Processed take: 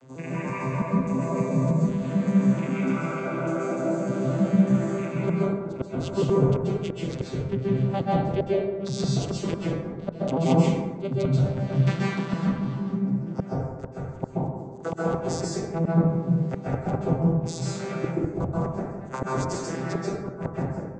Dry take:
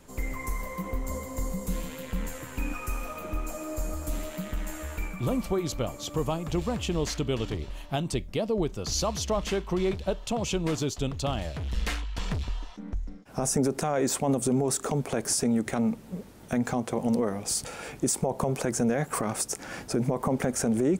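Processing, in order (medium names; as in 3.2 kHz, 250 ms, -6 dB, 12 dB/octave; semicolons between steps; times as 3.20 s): vocoder on a broken chord major triad, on C3, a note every 148 ms; inverted gate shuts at -22 dBFS, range -35 dB; plate-style reverb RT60 1.3 s, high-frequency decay 0.4×, pre-delay 120 ms, DRR -5.5 dB; trim +6.5 dB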